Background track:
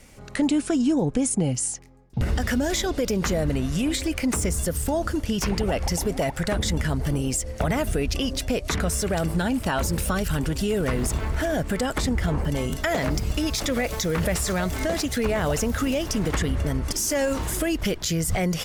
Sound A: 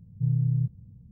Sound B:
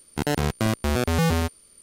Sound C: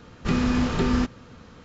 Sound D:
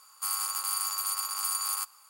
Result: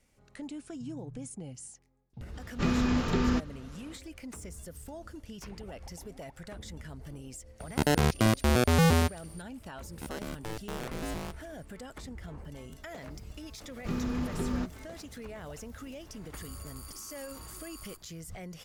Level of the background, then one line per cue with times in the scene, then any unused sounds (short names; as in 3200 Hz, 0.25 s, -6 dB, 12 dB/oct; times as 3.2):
background track -19.5 dB
0.6 add A -18 dB + limiter -23.5 dBFS
2.34 add C -4.5 dB
7.6 add B -1 dB
9.84 add B -15.5 dB + polarity switched at an audio rate 110 Hz
13.6 add C -9.5 dB + bell 2900 Hz -5 dB 2.9 oct
16.12 add D -13 dB + compressor 3:1, threshold -34 dBFS